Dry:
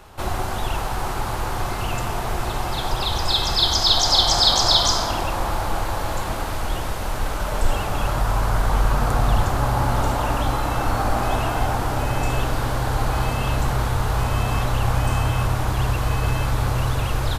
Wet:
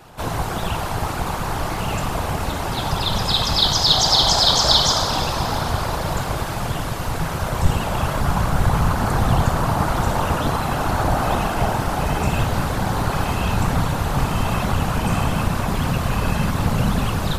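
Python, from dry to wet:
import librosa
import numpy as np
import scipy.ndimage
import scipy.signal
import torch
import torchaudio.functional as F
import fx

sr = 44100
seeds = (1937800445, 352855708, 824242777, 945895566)

p1 = 10.0 ** (-11.5 / 20.0) * np.tanh(x / 10.0 ** (-11.5 / 20.0))
p2 = x + (p1 * librosa.db_to_amplitude(-7.0))
p3 = fx.cheby_harmonics(p2, sr, harmonics=(5, 7), levels_db=(-42, -36), full_scale_db=-1.0)
p4 = fx.rev_schroeder(p3, sr, rt60_s=4.0, comb_ms=31, drr_db=9.0)
p5 = fx.whisperise(p4, sr, seeds[0])
y = p5 * librosa.db_to_amplitude(-1.5)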